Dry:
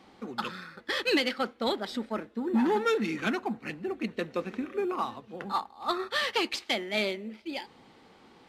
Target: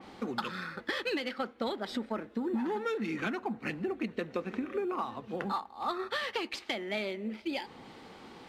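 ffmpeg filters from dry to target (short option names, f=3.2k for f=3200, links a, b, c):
-af "acompressor=threshold=-37dB:ratio=6,adynamicequalizer=threshold=0.00126:dfrequency=3100:dqfactor=0.7:tfrequency=3100:tqfactor=0.7:attack=5:release=100:ratio=0.375:range=3:mode=cutabove:tftype=highshelf,volume=6dB"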